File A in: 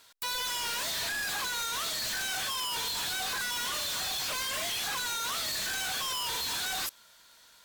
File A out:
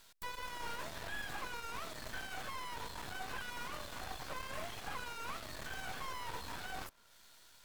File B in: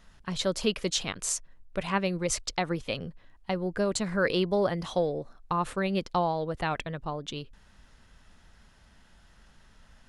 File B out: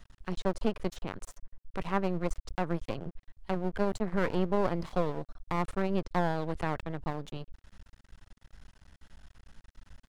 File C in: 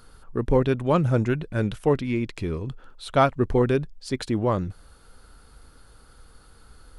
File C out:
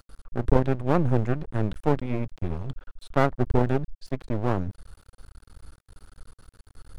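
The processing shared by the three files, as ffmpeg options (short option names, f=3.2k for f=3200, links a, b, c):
-filter_complex "[0:a]acrossover=split=170|1600[a][b][c];[c]acompressor=threshold=-48dB:ratio=8[d];[a][b][d]amix=inputs=3:normalize=0,lowshelf=f=100:g=9.5,aeval=exprs='max(val(0),0)':c=same"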